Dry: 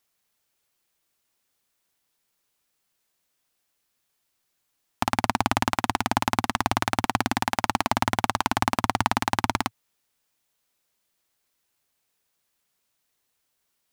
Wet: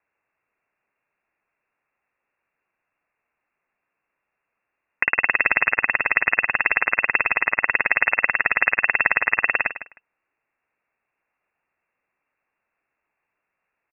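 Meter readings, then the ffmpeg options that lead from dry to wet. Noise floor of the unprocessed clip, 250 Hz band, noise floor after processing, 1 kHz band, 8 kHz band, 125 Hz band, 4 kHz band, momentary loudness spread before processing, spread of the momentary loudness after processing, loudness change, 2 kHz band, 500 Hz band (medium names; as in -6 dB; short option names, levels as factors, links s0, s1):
-76 dBFS, -13.5 dB, -81 dBFS, -4.0 dB, under -40 dB, under -10 dB, under -15 dB, 2 LU, 3 LU, +6.5 dB, +13.5 dB, -1.0 dB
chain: -af "aecho=1:1:155|310:0.237|0.0379,lowpass=f=2400:t=q:w=0.5098,lowpass=f=2400:t=q:w=0.6013,lowpass=f=2400:t=q:w=0.9,lowpass=f=2400:t=q:w=2.563,afreqshift=-2800,volume=1.68"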